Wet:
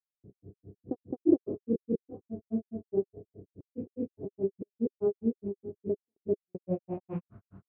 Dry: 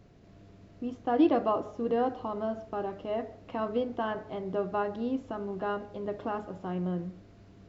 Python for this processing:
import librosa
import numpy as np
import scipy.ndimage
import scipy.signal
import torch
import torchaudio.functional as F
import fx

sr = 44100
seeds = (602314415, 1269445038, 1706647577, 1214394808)

y = fx.rattle_buzz(x, sr, strikes_db=-40.0, level_db=-32.0)
y = scipy.signal.sosfilt(scipy.signal.butter(2, 110.0, 'highpass', fs=sr, output='sos'), y)
y = fx.bass_treble(y, sr, bass_db=13, treble_db=-2)
y = fx.room_early_taps(y, sr, ms=(31, 53), db=(-7.0, -7.0))
y = fx.step_gate(y, sr, bpm=142, pattern='xxx.xxxxxxxxx..', floor_db=-60.0, edge_ms=4.5)
y = fx.granulator(y, sr, seeds[0], grain_ms=127.0, per_s=4.8, spray_ms=264.0, spread_st=0)
y = fx.filter_sweep_lowpass(y, sr, from_hz=400.0, to_hz=1300.0, start_s=6.44, end_s=7.35, q=4.3)
y = y * librosa.db_to_amplitude(-4.5)